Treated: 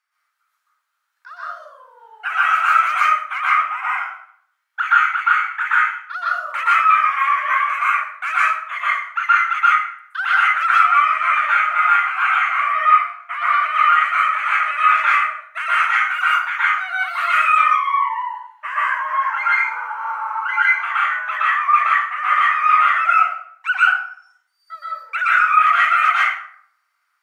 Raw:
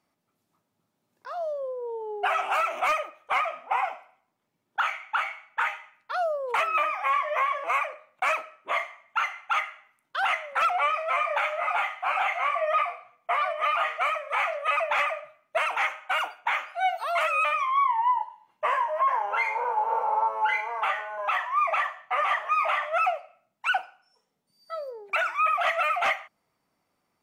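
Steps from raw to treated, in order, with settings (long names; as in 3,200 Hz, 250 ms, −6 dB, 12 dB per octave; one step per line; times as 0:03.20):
four-pole ladder high-pass 1,300 Hz, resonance 60%
dense smooth reverb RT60 0.6 s, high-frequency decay 0.65×, pre-delay 110 ms, DRR −8 dB
level +7 dB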